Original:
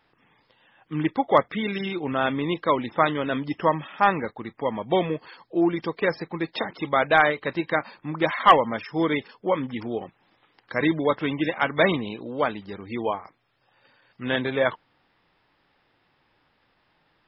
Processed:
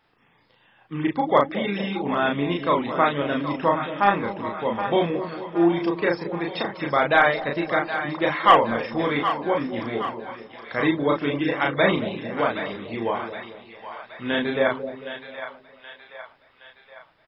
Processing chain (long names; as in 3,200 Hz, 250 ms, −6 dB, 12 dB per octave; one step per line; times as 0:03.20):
double-tracking delay 35 ms −2.5 dB
on a send: echo with a time of its own for lows and highs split 650 Hz, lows 224 ms, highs 770 ms, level −9.5 dB
on the sum: level −1 dB